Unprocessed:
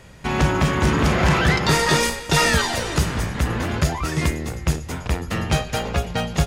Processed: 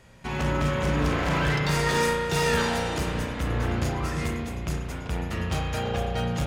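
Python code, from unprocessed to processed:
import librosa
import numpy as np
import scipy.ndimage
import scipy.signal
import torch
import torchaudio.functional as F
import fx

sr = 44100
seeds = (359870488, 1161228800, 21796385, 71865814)

y = np.clip(x, -10.0 ** (-15.0 / 20.0), 10.0 ** (-15.0 / 20.0))
y = fx.rev_spring(y, sr, rt60_s=1.9, pass_ms=(34,), chirp_ms=45, drr_db=-0.5)
y = y * librosa.db_to_amplitude(-8.5)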